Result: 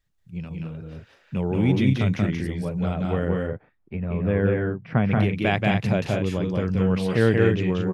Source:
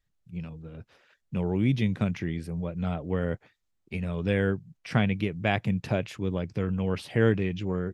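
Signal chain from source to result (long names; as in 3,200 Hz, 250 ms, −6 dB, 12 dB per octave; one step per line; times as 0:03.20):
0:03.28–0:05.11: low-pass filter 1,500 Hz 12 dB per octave
on a send: loudspeakers that aren't time-aligned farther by 62 metres −2 dB, 75 metres −6 dB
on the sum: level +3 dB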